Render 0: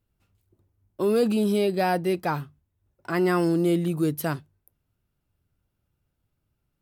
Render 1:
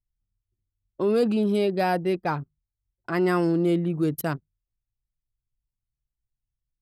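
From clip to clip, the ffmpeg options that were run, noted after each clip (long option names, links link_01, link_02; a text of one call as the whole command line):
ffmpeg -i in.wav -af "anlmdn=10" out.wav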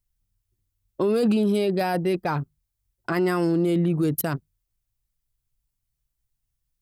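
ffmpeg -i in.wav -af "highshelf=frequency=6400:gain=8,alimiter=limit=-20.5dB:level=0:latency=1:release=14,volume=5.5dB" out.wav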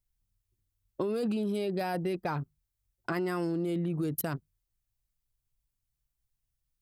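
ffmpeg -i in.wav -af "acompressor=threshold=-24dB:ratio=6,volume=-4dB" out.wav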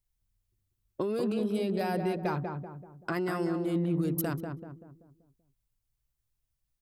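ffmpeg -i in.wav -filter_complex "[0:a]asplit=2[link_01][link_02];[link_02]adelay=192,lowpass=frequency=1200:poles=1,volume=-4dB,asplit=2[link_03][link_04];[link_04]adelay=192,lowpass=frequency=1200:poles=1,volume=0.46,asplit=2[link_05][link_06];[link_06]adelay=192,lowpass=frequency=1200:poles=1,volume=0.46,asplit=2[link_07][link_08];[link_08]adelay=192,lowpass=frequency=1200:poles=1,volume=0.46,asplit=2[link_09][link_10];[link_10]adelay=192,lowpass=frequency=1200:poles=1,volume=0.46,asplit=2[link_11][link_12];[link_12]adelay=192,lowpass=frequency=1200:poles=1,volume=0.46[link_13];[link_01][link_03][link_05][link_07][link_09][link_11][link_13]amix=inputs=7:normalize=0" out.wav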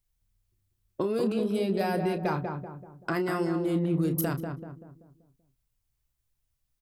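ffmpeg -i in.wav -filter_complex "[0:a]asplit=2[link_01][link_02];[link_02]adelay=31,volume=-10dB[link_03];[link_01][link_03]amix=inputs=2:normalize=0,volume=2.5dB" out.wav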